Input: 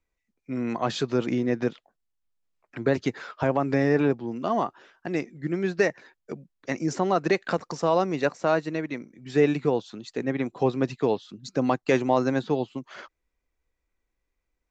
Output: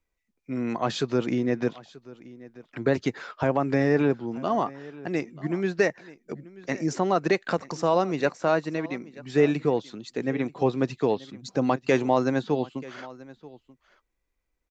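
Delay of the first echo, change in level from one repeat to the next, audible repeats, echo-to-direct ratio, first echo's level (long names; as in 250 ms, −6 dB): 934 ms, repeats not evenly spaced, 1, −20.0 dB, −20.0 dB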